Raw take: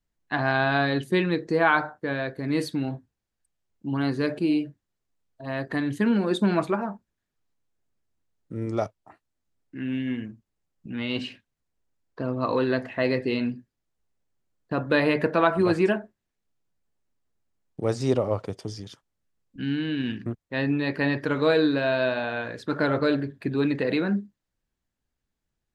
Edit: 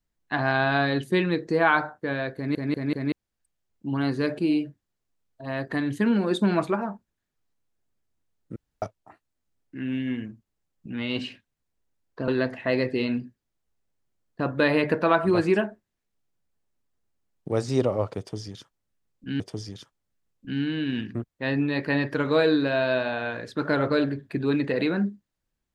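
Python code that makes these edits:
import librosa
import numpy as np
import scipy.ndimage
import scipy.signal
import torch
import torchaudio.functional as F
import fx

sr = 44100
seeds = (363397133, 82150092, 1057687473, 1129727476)

y = fx.edit(x, sr, fx.stutter_over(start_s=2.36, slice_s=0.19, count=4),
    fx.room_tone_fill(start_s=8.56, length_s=0.26),
    fx.cut(start_s=12.28, length_s=0.32),
    fx.repeat(start_s=18.51, length_s=1.21, count=2), tone=tone)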